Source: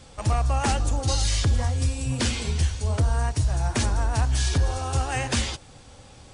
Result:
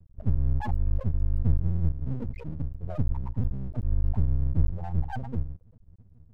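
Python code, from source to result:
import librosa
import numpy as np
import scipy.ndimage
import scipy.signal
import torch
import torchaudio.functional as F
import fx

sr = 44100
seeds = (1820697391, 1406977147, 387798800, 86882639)

y = fx.comb(x, sr, ms=6.5, depth=0.67, at=(2.23, 3.89))
y = fx.spec_topn(y, sr, count=2)
y = np.maximum(y, 0.0)
y = F.gain(torch.from_numpy(y), 4.0).numpy()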